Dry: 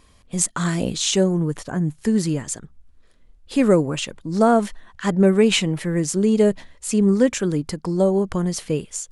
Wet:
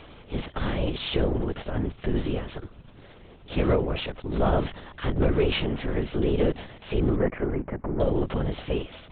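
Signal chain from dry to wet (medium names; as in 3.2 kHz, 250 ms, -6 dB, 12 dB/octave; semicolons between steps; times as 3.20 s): spectral levelling over time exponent 0.6; 7.15–8.01 s: Chebyshev low-pass 2.1 kHz, order 4; LPC vocoder at 8 kHz whisper; trim -8.5 dB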